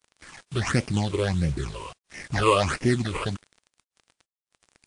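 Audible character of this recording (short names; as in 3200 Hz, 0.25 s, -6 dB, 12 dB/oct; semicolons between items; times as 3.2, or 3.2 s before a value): aliases and images of a low sample rate 3800 Hz, jitter 20%; phasing stages 8, 1.5 Hz, lowest notch 210–1200 Hz; a quantiser's noise floor 8-bit, dither none; WMA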